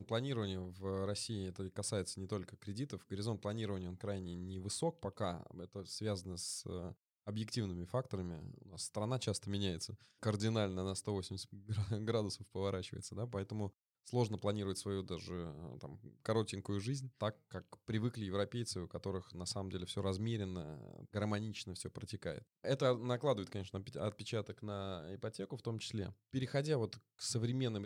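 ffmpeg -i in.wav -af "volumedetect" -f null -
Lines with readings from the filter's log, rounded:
mean_volume: -40.7 dB
max_volume: -22.6 dB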